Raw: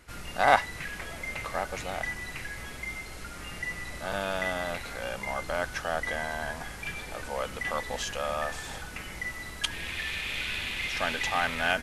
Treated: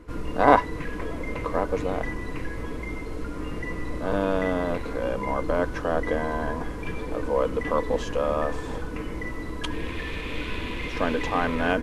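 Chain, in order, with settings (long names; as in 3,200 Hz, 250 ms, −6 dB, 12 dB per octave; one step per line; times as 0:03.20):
spectral tilt −2.5 dB per octave
hollow resonant body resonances 310/450/1,000 Hz, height 16 dB, ringing for 45 ms
level −1 dB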